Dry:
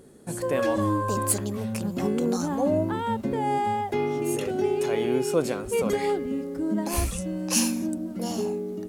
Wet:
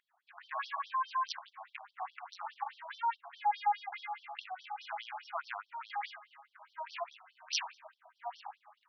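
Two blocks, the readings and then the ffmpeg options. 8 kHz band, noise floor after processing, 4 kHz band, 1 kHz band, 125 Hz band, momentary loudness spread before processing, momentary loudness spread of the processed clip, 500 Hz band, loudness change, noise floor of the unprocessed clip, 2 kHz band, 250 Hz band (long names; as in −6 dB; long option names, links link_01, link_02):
below −15 dB, −78 dBFS, −6.5 dB, −5.0 dB, below −40 dB, 6 LU, 18 LU, −27.0 dB, −13.0 dB, −36 dBFS, −6.5 dB, below −40 dB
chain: -af "adynamicsmooth=sensitivity=3:basefreq=1200,afftfilt=real='re*between(b*sr/1024,890*pow(4400/890,0.5+0.5*sin(2*PI*4.8*pts/sr))/1.41,890*pow(4400/890,0.5+0.5*sin(2*PI*4.8*pts/sr))*1.41)':imag='im*between(b*sr/1024,890*pow(4400/890,0.5+0.5*sin(2*PI*4.8*pts/sr))/1.41,890*pow(4400/890,0.5+0.5*sin(2*PI*4.8*pts/sr))*1.41)':win_size=1024:overlap=0.75,volume=1dB"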